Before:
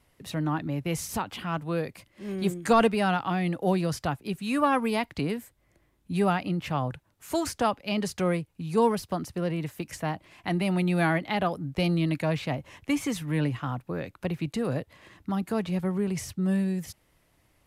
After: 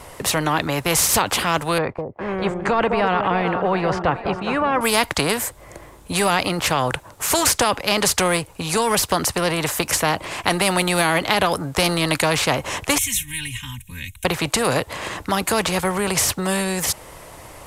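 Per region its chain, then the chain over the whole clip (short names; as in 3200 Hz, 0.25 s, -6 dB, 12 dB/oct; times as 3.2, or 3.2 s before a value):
1.78–4.81 LPF 1300 Hz + expander -45 dBFS + echo with dull and thin repeats by turns 0.203 s, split 800 Hz, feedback 61%, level -11 dB
12.98–14.25 Chebyshev band-stop 100–4100 Hz + fixed phaser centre 1300 Hz, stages 6 + comb 3.2 ms, depth 85%
whole clip: graphic EQ 250/500/1000/8000 Hz -3/+7/+8/+7 dB; maximiser +12.5 dB; spectral compressor 2:1; gain -1 dB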